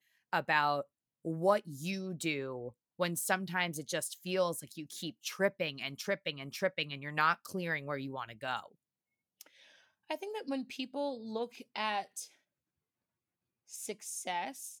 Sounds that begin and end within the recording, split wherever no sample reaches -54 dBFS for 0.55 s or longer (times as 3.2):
9.41–12.3